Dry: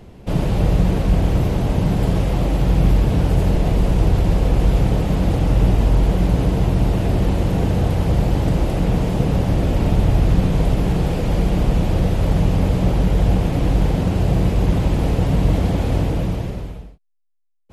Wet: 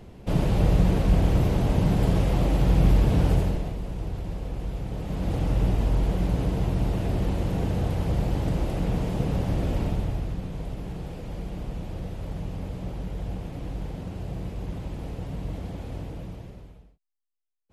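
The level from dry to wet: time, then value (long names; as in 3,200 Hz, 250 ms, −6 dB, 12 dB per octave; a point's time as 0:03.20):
0:03.32 −4 dB
0:03.78 −16 dB
0:04.85 −16 dB
0:05.38 −8 dB
0:09.77 −8 dB
0:10.38 −16.5 dB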